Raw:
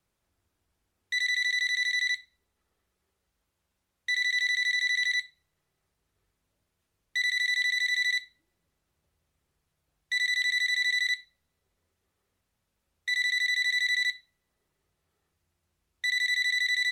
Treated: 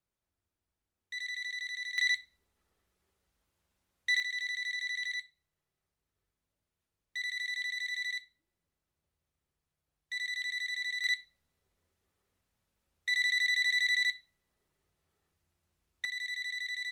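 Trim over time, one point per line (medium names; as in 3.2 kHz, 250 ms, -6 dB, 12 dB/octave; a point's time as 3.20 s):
-11 dB
from 1.98 s -0.5 dB
from 4.20 s -9 dB
from 11.04 s -2 dB
from 16.05 s -10.5 dB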